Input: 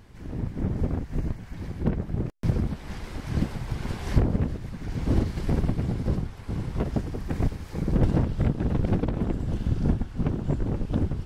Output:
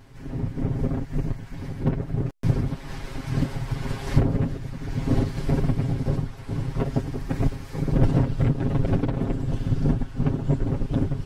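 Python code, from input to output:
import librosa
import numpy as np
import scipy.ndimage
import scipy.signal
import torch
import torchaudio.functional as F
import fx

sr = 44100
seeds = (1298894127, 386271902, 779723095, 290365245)

y = x + 0.88 * np.pad(x, (int(7.4 * sr / 1000.0), 0))[:len(x)]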